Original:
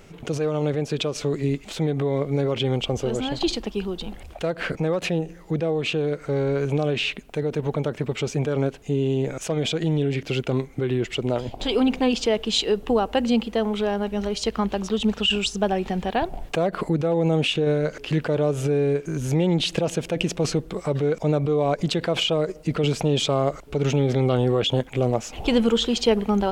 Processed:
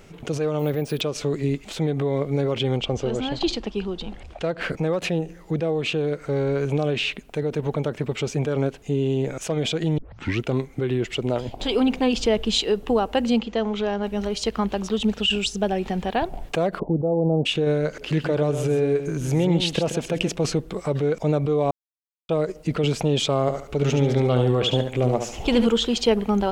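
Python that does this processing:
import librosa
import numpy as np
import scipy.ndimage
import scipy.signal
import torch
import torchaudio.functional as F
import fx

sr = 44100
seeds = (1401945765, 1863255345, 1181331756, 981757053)

y = fx.resample_bad(x, sr, factor=3, down='filtered', up='hold', at=(0.59, 1.01))
y = fx.lowpass(y, sr, hz=6600.0, slope=12, at=(2.77, 4.61))
y = fx.low_shelf(y, sr, hz=150.0, db=10.0, at=(12.15, 12.58))
y = fx.cheby1_lowpass(y, sr, hz=6900.0, order=4, at=(13.38, 14.04))
y = fx.peak_eq(y, sr, hz=1100.0, db=-5.5, octaves=0.8, at=(15.06, 15.81))
y = fx.steep_lowpass(y, sr, hz=850.0, slope=36, at=(16.78, 17.45), fade=0.02)
y = fx.echo_single(y, sr, ms=130, db=-9.0, at=(18.01, 20.32), fade=0.02)
y = fx.echo_feedback(y, sr, ms=71, feedback_pct=29, wet_db=-7, at=(23.41, 25.67))
y = fx.edit(y, sr, fx.tape_start(start_s=9.98, length_s=0.45),
    fx.silence(start_s=21.71, length_s=0.58), tone=tone)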